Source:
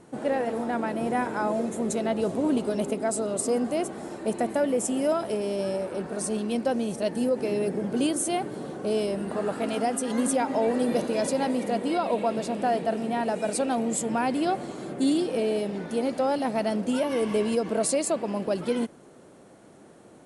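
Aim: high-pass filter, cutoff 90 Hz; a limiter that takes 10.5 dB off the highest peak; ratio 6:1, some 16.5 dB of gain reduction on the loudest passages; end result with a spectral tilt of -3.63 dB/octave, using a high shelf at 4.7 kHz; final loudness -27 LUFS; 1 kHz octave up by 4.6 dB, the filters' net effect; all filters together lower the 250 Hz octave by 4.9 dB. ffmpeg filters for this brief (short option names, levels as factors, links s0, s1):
-af "highpass=90,equalizer=f=250:t=o:g=-6,equalizer=f=1000:t=o:g=7,highshelf=f=4700:g=8,acompressor=threshold=0.0141:ratio=6,volume=6.68,alimiter=limit=0.126:level=0:latency=1"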